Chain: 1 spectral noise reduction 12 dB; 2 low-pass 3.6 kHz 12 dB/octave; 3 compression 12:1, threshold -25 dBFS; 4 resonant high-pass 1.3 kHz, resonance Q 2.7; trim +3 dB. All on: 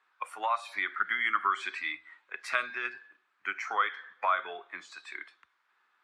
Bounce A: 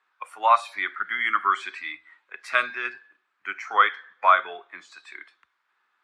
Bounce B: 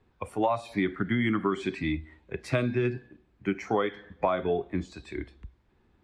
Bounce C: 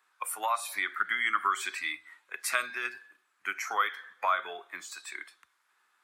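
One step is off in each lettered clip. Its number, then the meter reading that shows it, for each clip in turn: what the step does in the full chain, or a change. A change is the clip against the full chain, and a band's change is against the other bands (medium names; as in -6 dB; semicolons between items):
3, mean gain reduction 3.0 dB; 4, 250 Hz band +27.5 dB; 2, 8 kHz band +15.0 dB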